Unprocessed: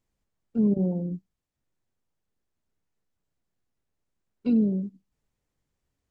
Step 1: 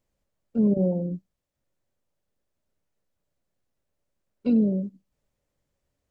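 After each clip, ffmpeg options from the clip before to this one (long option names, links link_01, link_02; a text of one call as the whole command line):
ffmpeg -i in.wav -af "equalizer=frequency=570:width_type=o:width=0.33:gain=9.5,volume=1dB" out.wav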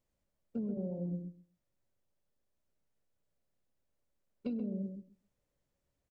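ffmpeg -i in.wav -filter_complex "[0:a]acompressor=threshold=-29dB:ratio=12,asplit=2[link_01][link_02];[link_02]adelay=131,lowpass=frequency=1000:poles=1,volume=-5dB,asplit=2[link_03][link_04];[link_04]adelay=131,lowpass=frequency=1000:poles=1,volume=0.16,asplit=2[link_05][link_06];[link_06]adelay=131,lowpass=frequency=1000:poles=1,volume=0.16[link_07];[link_03][link_05][link_07]amix=inputs=3:normalize=0[link_08];[link_01][link_08]amix=inputs=2:normalize=0,volume=-5.5dB" out.wav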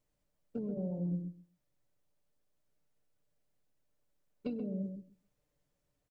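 ffmpeg -i in.wav -af "aecho=1:1:6.7:0.42,volume=1dB" out.wav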